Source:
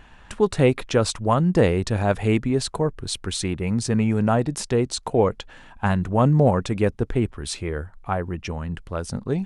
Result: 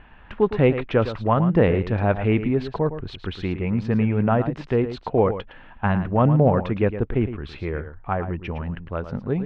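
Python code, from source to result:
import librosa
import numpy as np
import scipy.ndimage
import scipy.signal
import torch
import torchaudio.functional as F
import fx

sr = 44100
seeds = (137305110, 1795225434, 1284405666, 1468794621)

y = scipy.signal.sosfilt(scipy.signal.butter(4, 2900.0, 'lowpass', fs=sr, output='sos'), x)
y = y + 10.0 ** (-11.0 / 20.0) * np.pad(y, (int(111 * sr / 1000.0), 0))[:len(y)]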